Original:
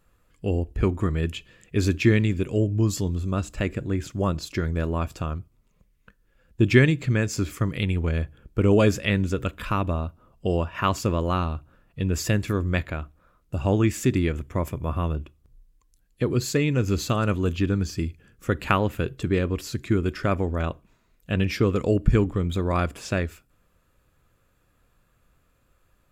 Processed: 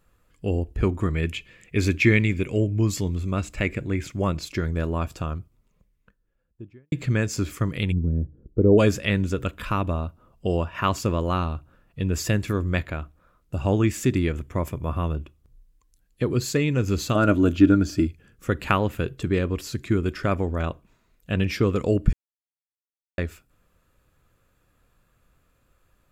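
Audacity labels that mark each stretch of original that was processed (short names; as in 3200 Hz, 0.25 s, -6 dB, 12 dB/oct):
1.140000	4.520000	bell 2200 Hz +11 dB 0.35 oct
5.390000	6.920000	studio fade out
7.910000	8.770000	synth low-pass 190 Hz -> 550 Hz, resonance Q 1.6
17.150000	18.070000	small resonant body resonances 300/610/1400 Hz, height 13 dB
22.130000	23.180000	mute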